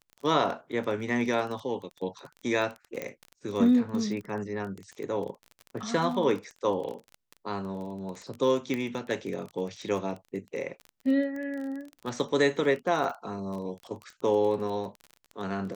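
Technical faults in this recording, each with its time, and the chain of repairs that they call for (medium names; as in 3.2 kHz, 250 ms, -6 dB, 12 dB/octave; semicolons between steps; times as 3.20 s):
crackle 24 per s -34 dBFS
3.02 s: pop -19 dBFS
8.74 s: pop -18 dBFS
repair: de-click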